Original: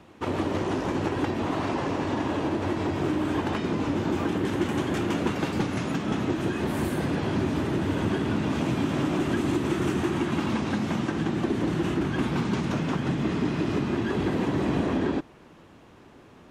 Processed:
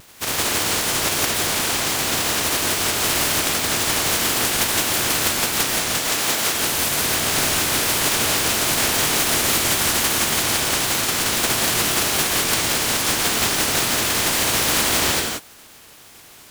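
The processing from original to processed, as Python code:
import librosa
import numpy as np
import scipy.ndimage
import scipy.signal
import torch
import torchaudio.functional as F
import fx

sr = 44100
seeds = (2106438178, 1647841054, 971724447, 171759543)

y = fx.spec_flatten(x, sr, power=0.14)
y = fx.highpass(y, sr, hz=240.0, slope=6, at=(6.03, 6.53))
y = fx.rev_gated(y, sr, seeds[0], gate_ms=200, shape='rising', drr_db=2.0)
y = fx.vibrato_shape(y, sr, shape='saw_down', rate_hz=3.7, depth_cents=100.0)
y = y * 10.0 ** (4.5 / 20.0)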